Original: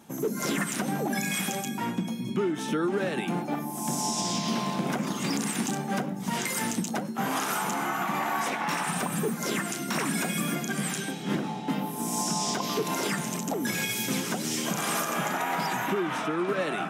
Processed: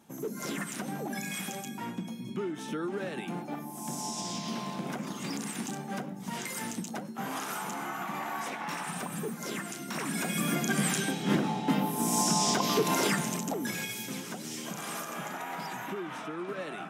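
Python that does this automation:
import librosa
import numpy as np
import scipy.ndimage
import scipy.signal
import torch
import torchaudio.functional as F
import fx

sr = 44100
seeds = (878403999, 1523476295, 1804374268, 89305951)

y = fx.gain(x, sr, db=fx.line((9.93, -7.0), (10.68, 2.0), (13.04, 2.0), (14.1, -9.0)))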